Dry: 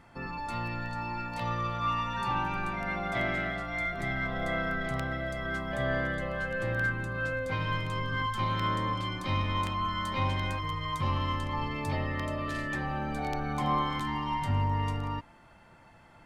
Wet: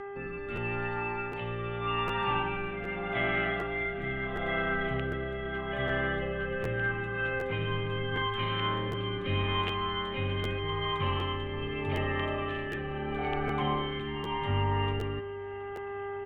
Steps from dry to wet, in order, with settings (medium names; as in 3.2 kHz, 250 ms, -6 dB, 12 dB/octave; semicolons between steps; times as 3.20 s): FFT filter 900 Hz 0 dB, 2.1 kHz +3 dB, 3 kHz +9 dB, 4.8 kHz -22 dB; mains buzz 400 Hz, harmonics 5, -37 dBFS -6 dB/octave; rotary cabinet horn 0.8 Hz; on a send: feedback delay 725 ms, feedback 57%, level -20.5 dB; on the sum: crackling interface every 0.76 s, samples 512, repeat, from 0.55 s